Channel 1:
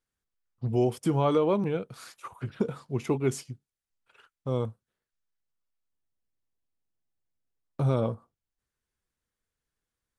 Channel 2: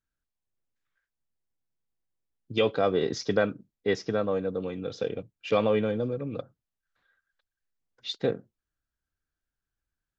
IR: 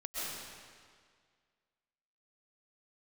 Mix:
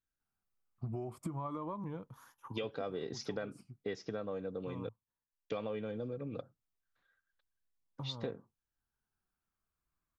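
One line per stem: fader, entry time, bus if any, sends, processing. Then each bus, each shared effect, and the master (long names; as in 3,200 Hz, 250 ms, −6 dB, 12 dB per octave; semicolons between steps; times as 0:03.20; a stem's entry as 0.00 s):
−1.5 dB, 0.20 s, no send, rippled gain that drifts along the octave scale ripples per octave 1.1, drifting −0.34 Hz, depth 9 dB; octave-band graphic EQ 500/1,000/2,000/4,000/8,000 Hz −10/+8/−7/−11/−9 dB; downward compressor, threshold −30 dBFS, peak gain reduction 10.5 dB; automatic ducking −9 dB, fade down 1.20 s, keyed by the second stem
−6.0 dB, 0.00 s, muted 0:04.89–0:05.50, no send, no processing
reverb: not used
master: downward compressor 5 to 1, threshold −36 dBFS, peak gain reduction 11 dB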